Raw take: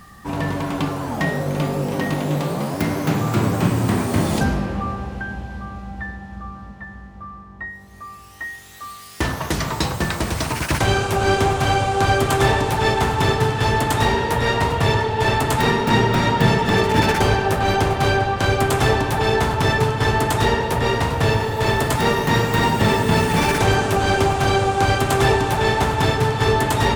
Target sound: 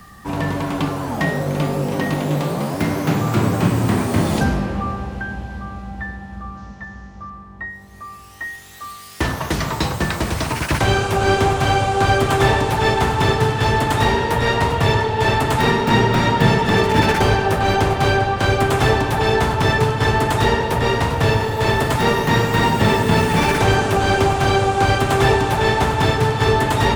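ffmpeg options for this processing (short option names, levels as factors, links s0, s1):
-filter_complex "[0:a]acrossover=split=290|1800|4400[s0][s1][s2][s3];[s3]asoftclip=type=tanh:threshold=0.0266[s4];[s0][s1][s2][s4]amix=inputs=4:normalize=0,asettb=1/sr,asplit=3[s5][s6][s7];[s5]atrim=end=6.574[s8];[s6]atrim=start=6.57:end=7.3,asetpts=PTS-STARTPTS,afade=t=in:d=0.004:c=qsin,afade=t=out:st=0.726:d=0.004:c=qsin,lowpass=f=6100:t=q:w=3.3[s9];[s7]atrim=start=7.296[s10];[s8][s9]acrossfade=d=0.004:c1=hsin:c2=qsin[s11];[s11][s10]acrossfade=d=0.004:c1=qsin:c2=hsin,volume=1.19"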